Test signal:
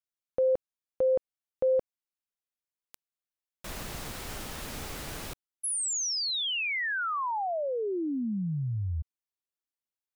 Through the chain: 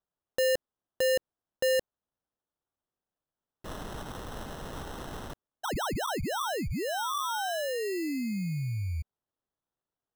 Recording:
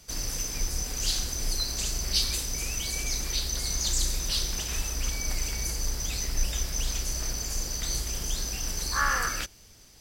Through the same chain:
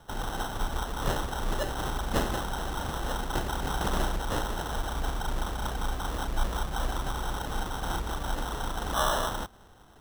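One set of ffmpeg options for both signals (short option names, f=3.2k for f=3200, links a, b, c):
-af "acrusher=samples=19:mix=1:aa=0.000001,volume=-1dB"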